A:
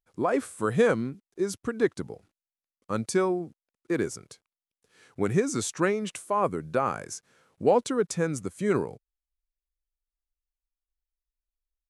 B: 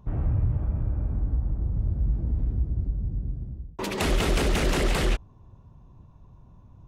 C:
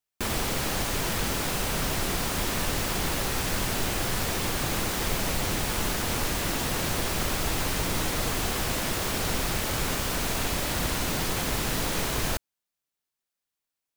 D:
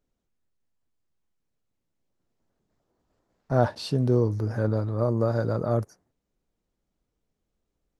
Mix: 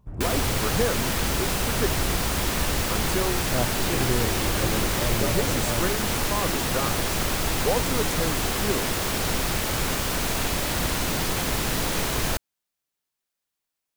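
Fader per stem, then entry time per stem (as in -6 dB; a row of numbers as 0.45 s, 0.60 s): -4.0 dB, -7.5 dB, +2.5 dB, -6.0 dB; 0.00 s, 0.00 s, 0.00 s, 0.00 s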